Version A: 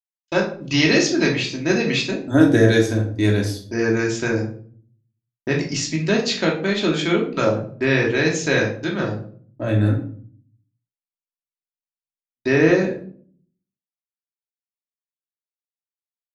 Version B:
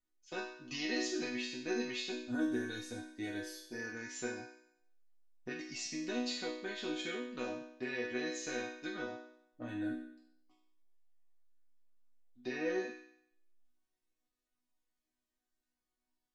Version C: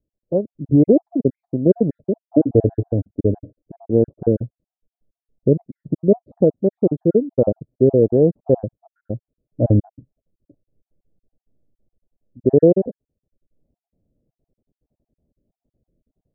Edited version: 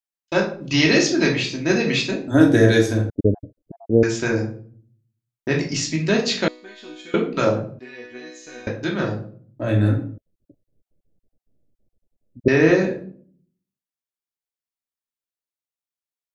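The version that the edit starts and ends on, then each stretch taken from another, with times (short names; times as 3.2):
A
3.1–4.03 from C
6.48–7.14 from B
7.79–8.67 from B
10.18–12.48 from C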